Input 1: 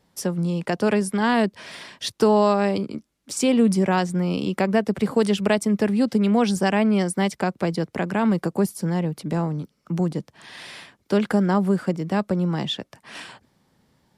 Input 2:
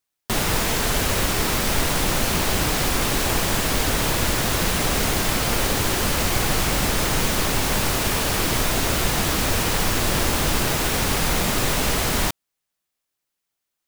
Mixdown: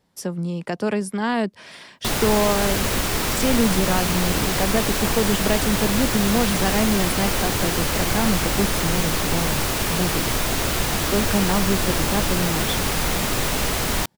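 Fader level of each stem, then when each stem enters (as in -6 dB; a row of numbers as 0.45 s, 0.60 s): -2.5 dB, -1.0 dB; 0.00 s, 1.75 s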